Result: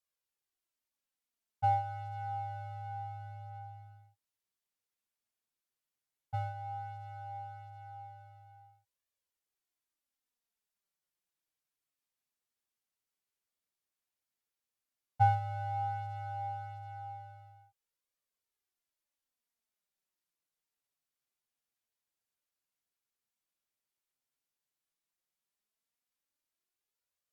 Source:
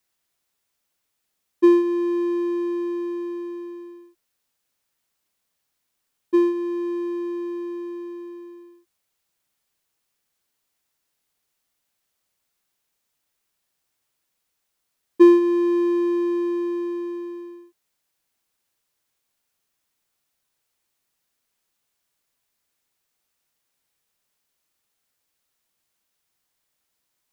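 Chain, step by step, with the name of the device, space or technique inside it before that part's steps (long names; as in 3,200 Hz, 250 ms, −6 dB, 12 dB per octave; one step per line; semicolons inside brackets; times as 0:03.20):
alien voice (ring modulation 450 Hz; flanger 0.11 Hz, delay 1.6 ms, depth 9 ms, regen +36%)
level −8.5 dB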